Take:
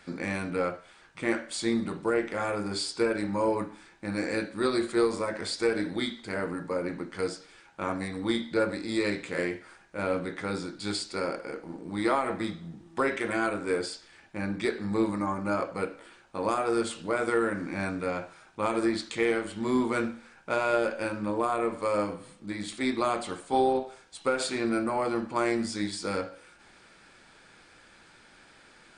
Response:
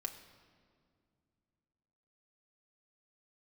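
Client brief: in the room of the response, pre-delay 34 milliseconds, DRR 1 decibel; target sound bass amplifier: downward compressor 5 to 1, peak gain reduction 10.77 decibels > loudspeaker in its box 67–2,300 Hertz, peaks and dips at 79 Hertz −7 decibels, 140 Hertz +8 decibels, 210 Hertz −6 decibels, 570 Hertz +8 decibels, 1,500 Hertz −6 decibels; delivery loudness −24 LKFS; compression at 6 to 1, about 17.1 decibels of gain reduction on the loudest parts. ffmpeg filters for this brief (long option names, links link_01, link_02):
-filter_complex "[0:a]acompressor=threshold=-40dB:ratio=6,asplit=2[link_01][link_02];[1:a]atrim=start_sample=2205,adelay=34[link_03];[link_02][link_03]afir=irnorm=-1:irlink=0,volume=0dB[link_04];[link_01][link_04]amix=inputs=2:normalize=0,acompressor=threshold=-44dB:ratio=5,highpass=frequency=67:width=0.5412,highpass=frequency=67:width=1.3066,equalizer=frequency=79:width_type=q:width=4:gain=-7,equalizer=frequency=140:width_type=q:width=4:gain=8,equalizer=frequency=210:width_type=q:width=4:gain=-6,equalizer=frequency=570:width_type=q:width=4:gain=8,equalizer=frequency=1500:width_type=q:width=4:gain=-6,lowpass=frequency=2300:width=0.5412,lowpass=frequency=2300:width=1.3066,volume=23.5dB"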